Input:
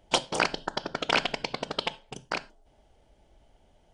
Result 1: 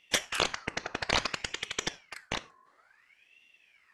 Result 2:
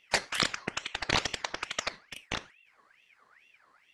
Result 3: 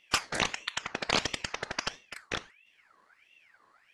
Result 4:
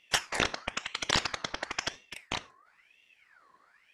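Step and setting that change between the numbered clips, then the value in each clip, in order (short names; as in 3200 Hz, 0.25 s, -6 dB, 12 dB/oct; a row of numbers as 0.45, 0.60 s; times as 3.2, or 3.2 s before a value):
ring modulator with a swept carrier, at: 0.58, 2.3, 1.5, 0.99 Hz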